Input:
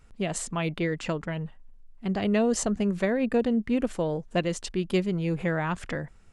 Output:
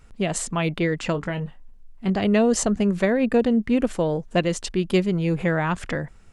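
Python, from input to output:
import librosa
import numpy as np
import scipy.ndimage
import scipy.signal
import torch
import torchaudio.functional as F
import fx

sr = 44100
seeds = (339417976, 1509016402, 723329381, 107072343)

y = fx.doubler(x, sr, ms=21.0, db=-9.0, at=(1.12, 2.1))
y = y * librosa.db_to_amplitude(5.0)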